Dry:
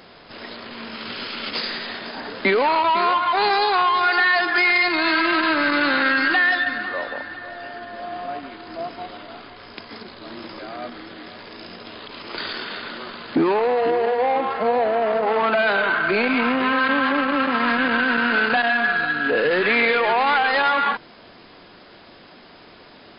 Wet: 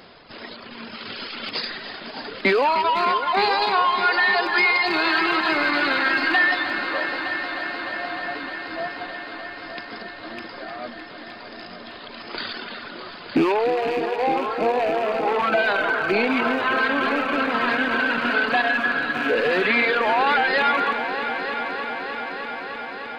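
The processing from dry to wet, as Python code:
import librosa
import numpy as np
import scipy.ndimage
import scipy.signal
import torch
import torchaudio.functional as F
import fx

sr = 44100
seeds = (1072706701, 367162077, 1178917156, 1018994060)

y = fx.rattle_buzz(x, sr, strikes_db=-36.0, level_db=-19.0)
y = fx.dereverb_blind(y, sr, rt60_s=1.8)
y = fx.echo_heads(y, sr, ms=305, heads='all three', feedback_pct=74, wet_db=-14.5)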